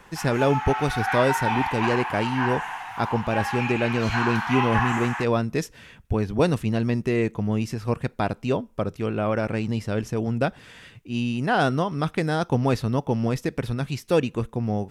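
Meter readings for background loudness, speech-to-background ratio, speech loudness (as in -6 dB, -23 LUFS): -27.5 LUFS, 2.0 dB, -25.5 LUFS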